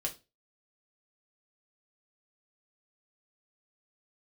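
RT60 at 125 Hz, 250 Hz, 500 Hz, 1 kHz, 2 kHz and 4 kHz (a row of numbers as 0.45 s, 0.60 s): 0.35 s, 0.30 s, 0.30 s, 0.25 s, 0.25 s, 0.25 s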